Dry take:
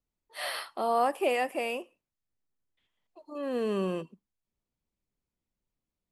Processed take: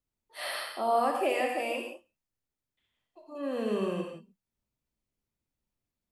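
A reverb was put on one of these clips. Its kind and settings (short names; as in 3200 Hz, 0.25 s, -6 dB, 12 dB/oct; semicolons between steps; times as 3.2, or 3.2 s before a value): non-linear reverb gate 0.2 s flat, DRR 1 dB; gain -2.5 dB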